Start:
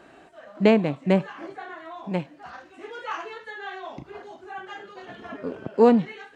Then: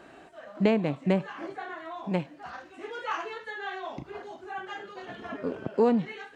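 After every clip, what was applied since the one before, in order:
downward compressor 2.5 to 1, threshold −22 dBFS, peak gain reduction 7.5 dB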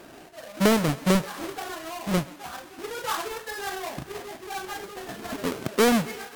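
each half-wave held at its own peak
feedback echo with a high-pass in the loop 132 ms, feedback 82%, high-pass 390 Hz, level −20 dB
MP3 80 kbit/s 48,000 Hz

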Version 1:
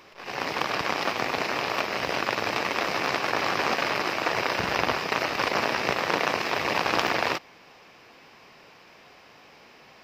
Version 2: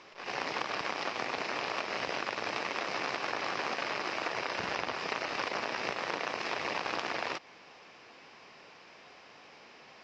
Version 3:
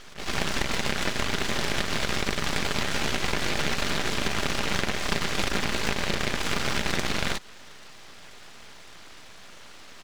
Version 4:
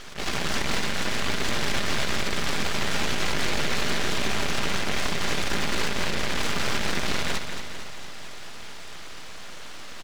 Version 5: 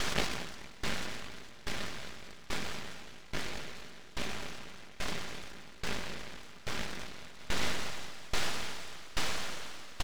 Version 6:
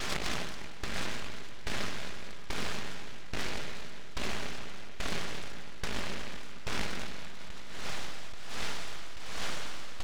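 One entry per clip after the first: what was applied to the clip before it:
Butterworth low-pass 7,300 Hz 36 dB per octave; low-shelf EQ 130 Hz −9 dB; downward compressor, threshold −28 dBFS, peak gain reduction 10 dB; level −2 dB
comb filter 5 ms, depth 41%; full-wave rectification; level +9 dB
brickwall limiter −18.5 dBFS, peak gain reduction 11 dB; repeating echo 225 ms, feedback 57%, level −8 dB; level +5 dB
compressor whose output falls as the input rises −31 dBFS, ratio −1; tremolo with a ramp in dB decaying 1.2 Hz, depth 22 dB; level +3.5 dB
compressor whose output falls as the input rises −32 dBFS, ratio −0.5; spring reverb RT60 3.5 s, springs 41/58 ms, chirp 65 ms, DRR 14 dB; highs frequency-modulated by the lows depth 0.64 ms; level +1.5 dB

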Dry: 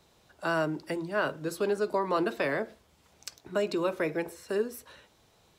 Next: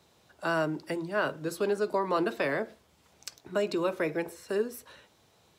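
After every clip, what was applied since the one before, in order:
high-pass filter 68 Hz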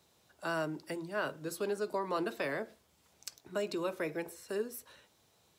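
high-shelf EQ 5,800 Hz +7.5 dB
level −6.5 dB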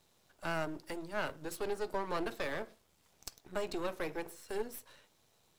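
gain on one half-wave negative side −12 dB
level +1.5 dB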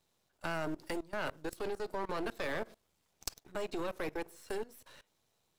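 output level in coarse steps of 21 dB
level +6.5 dB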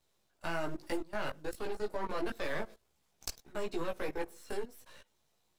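multi-voice chorus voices 6, 1 Hz, delay 17 ms, depth 3.1 ms
level +3 dB

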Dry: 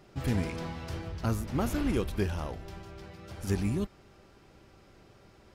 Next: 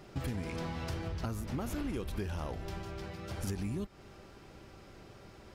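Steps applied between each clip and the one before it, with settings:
in parallel at +2.5 dB: brickwall limiter −23.5 dBFS, peak gain reduction 8 dB
on the sum: downward compressor 6 to 1, threshold −30 dBFS, peak gain reduction 11 dB
level −3.5 dB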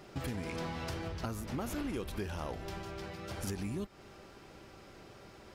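low-shelf EQ 170 Hz −6.5 dB
level +1.5 dB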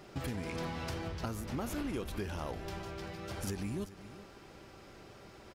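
single-tap delay 389 ms −15.5 dB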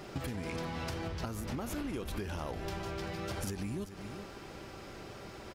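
downward compressor, threshold −41 dBFS, peak gain reduction 8.5 dB
level +6.5 dB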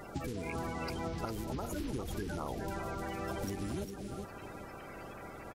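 spectral magnitudes quantised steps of 30 dB
single-tap delay 404 ms −7.5 dB

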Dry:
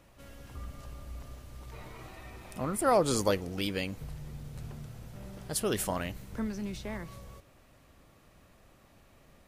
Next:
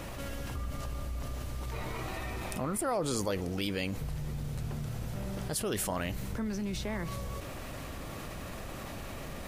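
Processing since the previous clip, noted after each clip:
envelope flattener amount 70%
level −8 dB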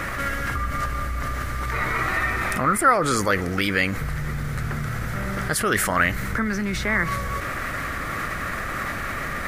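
flat-topped bell 1,600 Hz +13.5 dB 1.1 octaves
level +8.5 dB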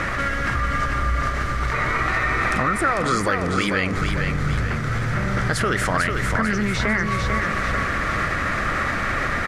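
low-pass filter 6,300 Hz 12 dB per octave
downward compressor, threshold −23 dBFS, peak gain reduction 10.5 dB
repeating echo 446 ms, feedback 46%, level −5 dB
level +4.5 dB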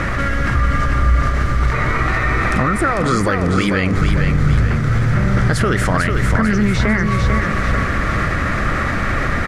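low-shelf EQ 380 Hz +8 dB
level +1.5 dB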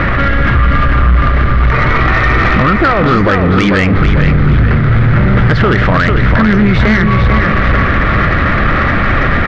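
inverse Chebyshev low-pass filter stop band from 8,600 Hz, stop band 50 dB
in parallel at −9 dB: sine wavefolder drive 10 dB, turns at −1.5 dBFS

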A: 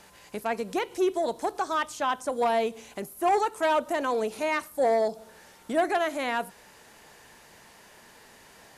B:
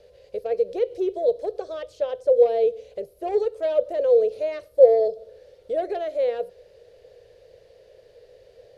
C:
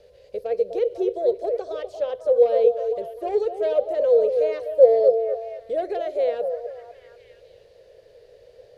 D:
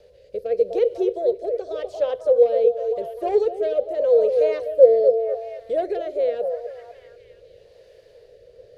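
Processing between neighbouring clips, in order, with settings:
drawn EQ curve 100 Hz 0 dB, 260 Hz −24 dB, 510 Hz +13 dB, 890 Hz −24 dB, 4,400 Hz −10 dB, 7,300 Hz −24 dB; level +4 dB
echo through a band-pass that steps 250 ms, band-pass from 540 Hz, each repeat 0.7 octaves, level −5 dB
rotating-speaker cabinet horn 0.85 Hz; level +3.5 dB

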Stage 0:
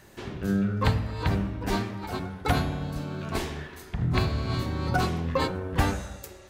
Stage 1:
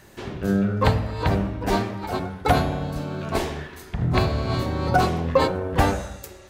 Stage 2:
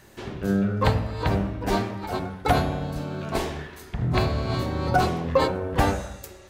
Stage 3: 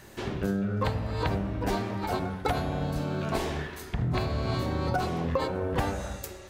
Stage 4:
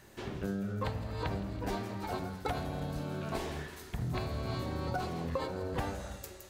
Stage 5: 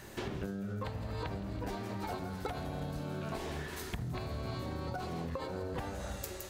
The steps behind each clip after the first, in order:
dynamic equaliser 610 Hz, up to +7 dB, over −43 dBFS, Q 1.1; level +3 dB
hum removal 85.52 Hz, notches 32; level −1.5 dB
downward compressor 6 to 1, threshold −27 dBFS, peak gain reduction 12 dB; level +2 dB
delay with a high-pass on its return 165 ms, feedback 82%, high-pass 5,100 Hz, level −7 dB; level −7 dB
downward compressor 10 to 1, threshold −42 dBFS, peak gain reduction 13.5 dB; level +7 dB

